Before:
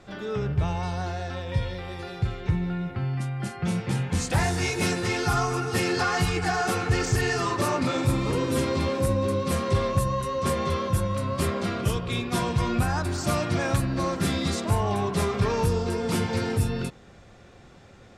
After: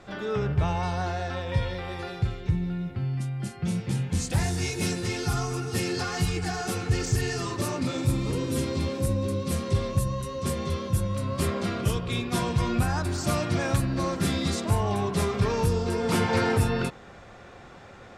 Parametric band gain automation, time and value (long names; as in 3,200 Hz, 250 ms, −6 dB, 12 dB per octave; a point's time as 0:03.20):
parametric band 1,100 Hz 2.7 octaves
0:02.05 +3 dB
0:02.51 −8.5 dB
0:10.92 −8.5 dB
0:11.51 −2 dB
0:15.79 −2 dB
0:16.36 +8 dB